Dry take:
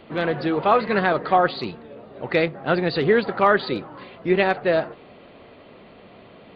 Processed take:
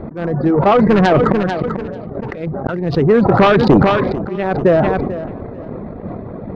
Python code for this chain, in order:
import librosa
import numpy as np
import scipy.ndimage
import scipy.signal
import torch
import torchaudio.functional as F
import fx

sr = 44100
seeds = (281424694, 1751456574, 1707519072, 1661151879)

p1 = fx.wiener(x, sr, points=15)
p2 = fx.lowpass(p1, sr, hz=1600.0, slope=6)
p3 = fx.low_shelf(p2, sr, hz=240.0, db=12.0)
p4 = fx.over_compress(p3, sr, threshold_db=-21.0, ratio=-0.5)
p5 = p3 + F.gain(torch.from_numpy(p4), -2.0).numpy()
p6 = fx.auto_swell(p5, sr, attack_ms=775.0)
p7 = fx.dereverb_blind(p6, sr, rt60_s=0.62)
p8 = fx.fold_sine(p7, sr, drive_db=6, ceiling_db=-4.5)
p9 = fx.transient(p8, sr, attack_db=6, sustain_db=-5)
p10 = p9 + fx.echo_feedback(p9, sr, ms=442, feedback_pct=25, wet_db=-14.5, dry=0)
p11 = fx.sustainer(p10, sr, db_per_s=29.0)
y = F.gain(torch.from_numpy(p11), -3.0).numpy()